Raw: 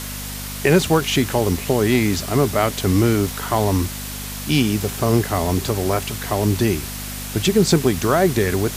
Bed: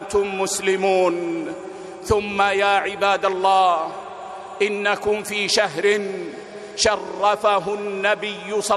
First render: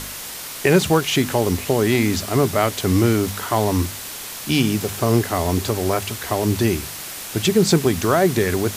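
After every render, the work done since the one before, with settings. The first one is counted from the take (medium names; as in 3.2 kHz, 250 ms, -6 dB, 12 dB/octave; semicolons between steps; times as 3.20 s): de-hum 50 Hz, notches 5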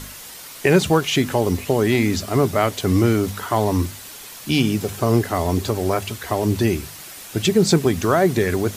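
noise reduction 7 dB, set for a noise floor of -33 dBFS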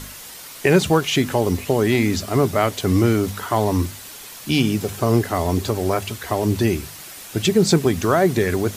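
no audible change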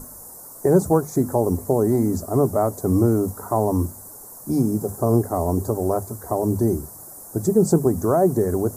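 Chebyshev band-stop 810–9000 Hz, order 2; hum notches 50/100/150/200 Hz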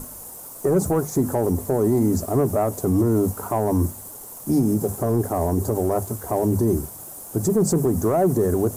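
waveshaping leveller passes 1; peak limiter -12 dBFS, peak gain reduction 7.5 dB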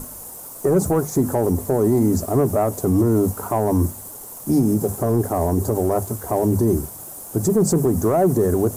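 trim +2 dB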